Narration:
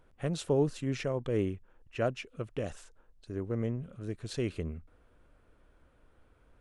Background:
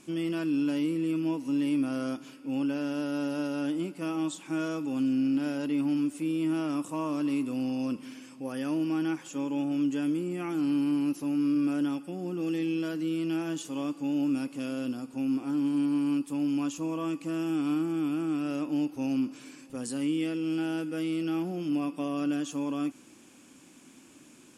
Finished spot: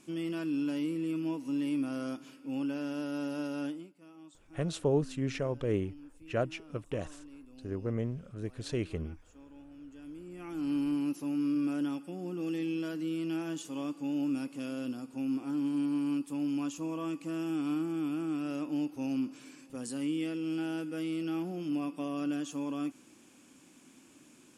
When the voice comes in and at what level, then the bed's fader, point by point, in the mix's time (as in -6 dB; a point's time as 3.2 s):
4.35 s, -0.5 dB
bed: 3.66 s -4.5 dB
3.94 s -22.5 dB
9.87 s -22.5 dB
10.73 s -4 dB